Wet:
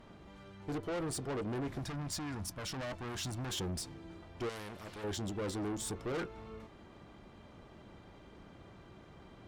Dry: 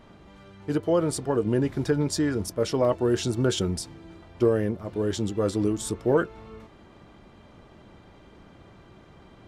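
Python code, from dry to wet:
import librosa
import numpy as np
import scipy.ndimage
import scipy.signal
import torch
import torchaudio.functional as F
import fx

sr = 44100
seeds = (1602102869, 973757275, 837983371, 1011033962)

y = fx.tube_stage(x, sr, drive_db=31.0, bias=0.25)
y = fx.peak_eq(y, sr, hz=420.0, db=-12.5, octaves=0.76, at=(1.79, 3.53))
y = fx.spectral_comp(y, sr, ratio=2.0, at=(4.49, 5.04))
y = y * librosa.db_to_amplitude(-3.5)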